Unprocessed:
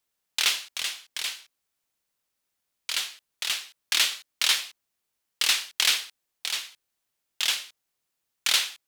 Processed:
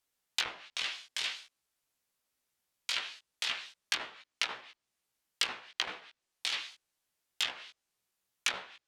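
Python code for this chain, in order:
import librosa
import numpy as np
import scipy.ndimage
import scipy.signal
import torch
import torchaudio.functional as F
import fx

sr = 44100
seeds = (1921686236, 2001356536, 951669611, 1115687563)

y = fx.env_lowpass_down(x, sr, base_hz=890.0, full_db=-21.0)
y = fx.doubler(y, sr, ms=16.0, db=-4.0)
y = y * 10.0 ** (-3.0 / 20.0)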